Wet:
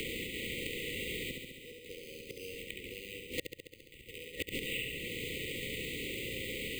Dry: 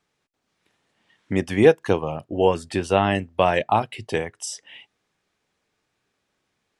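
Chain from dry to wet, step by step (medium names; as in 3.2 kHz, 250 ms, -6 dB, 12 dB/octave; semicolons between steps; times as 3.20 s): spectral levelling over time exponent 0.4; inverted gate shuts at -13 dBFS, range -40 dB; pre-emphasis filter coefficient 0.97; careless resampling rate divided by 8×, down none, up hold; peaking EQ 7.7 kHz -6 dB 1.7 oct; flutter echo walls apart 11.7 m, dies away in 0.85 s; FFT band-reject 550–1900 Hz; three bands compressed up and down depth 100%; trim +9 dB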